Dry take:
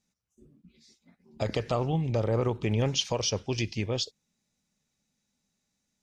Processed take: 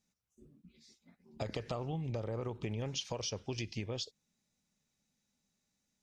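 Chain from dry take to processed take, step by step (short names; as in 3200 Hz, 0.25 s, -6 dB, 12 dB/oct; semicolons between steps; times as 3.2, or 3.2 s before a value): compressor 6:1, threshold -32 dBFS, peak gain reduction 10 dB; gain -3 dB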